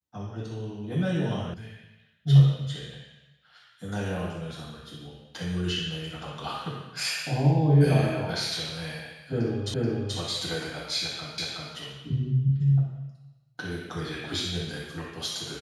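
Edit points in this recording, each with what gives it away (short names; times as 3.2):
1.54 sound cut off
9.74 repeat of the last 0.43 s
11.38 repeat of the last 0.37 s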